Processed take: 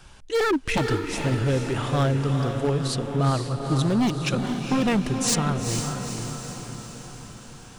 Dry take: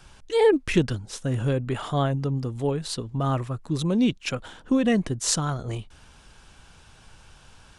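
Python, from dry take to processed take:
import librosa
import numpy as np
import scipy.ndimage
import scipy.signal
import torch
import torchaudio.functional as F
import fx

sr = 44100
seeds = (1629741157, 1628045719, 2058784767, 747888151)

y = 10.0 ** (-18.0 / 20.0) * (np.abs((x / 10.0 ** (-18.0 / 20.0) + 3.0) % 4.0 - 2.0) - 1.0)
y = fx.echo_diffused(y, sr, ms=459, feedback_pct=58, wet_db=-5.5)
y = F.gain(torch.from_numpy(y), 1.5).numpy()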